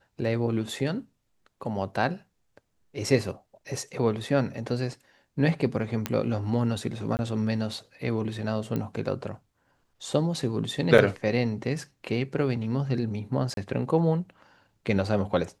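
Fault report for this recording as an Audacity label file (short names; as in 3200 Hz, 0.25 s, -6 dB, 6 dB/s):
6.060000	6.060000	pop -11 dBFS
7.170000	7.190000	gap 19 ms
8.760000	8.760000	pop -18 dBFS
10.980000	10.980000	gap 4.3 ms
13.540000	13.570000	gap 32 ms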